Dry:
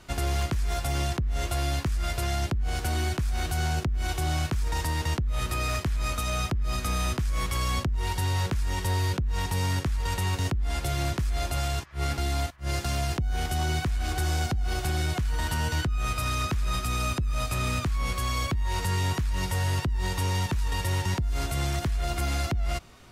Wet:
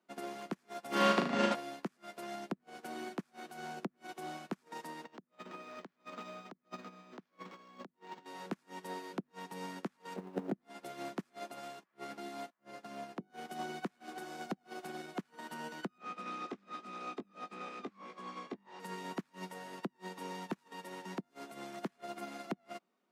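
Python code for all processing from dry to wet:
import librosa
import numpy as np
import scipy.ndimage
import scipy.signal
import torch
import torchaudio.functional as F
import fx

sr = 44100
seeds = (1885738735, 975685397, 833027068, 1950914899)

y = fx.spec_clip(x, sr, under_db=21, at=(0.91, 1.54), fade=0.02)
y = fx.lowpass(y, sr, hz=4300.0, slope=12, at=(0.91, 1.54), fade=0.02)
y = fx.room_flutter(y, sr, wall_m=6.5, rt60_s=0.98, at=(0.91, 1.54), fade=0.02)
y = fx.chain(y, sr, fx.over_compress(threshold_db=-29.0, ratio=-0.5),
    fx.resample_linear(factor=4), at=(5.04, 8.26))
y = fx.chain(y, sr, fx.median_filter(points=41),
    fx.highpass(hz=42.0, slope=12),
    fx.env_flatten(amount_pct=100), at=(10.16, 10.56))
y = fx.chain(y, sr, fx.high_shelf(hz=3200.0, db=-6.0),
    fx.hum_notches(base_hz=50, count=9), at=(12.53, 13.3))
y = fx.chain(y, sr, fx.lower_of_two(delay_ms=2.5),
    fx.air_absorb(metres=100.0),
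    fx.doubler(ms=20.0, db=-8.5), at=(15.98, 18.8))
y = scipy.signal.sosfilt(scipy.signal.ellip(4, 1.0, 50, 190.0, 'highpass', fs=sr, output='sos'), y)
y = fx.high_shelf(y, sr, hz=2200.0, db=-10.5)
y = fx.upward_expand(y, sr, threshold_db=-45.0, expansion=2.5)
y = y * 10.0 ** (2.5 / 20.0)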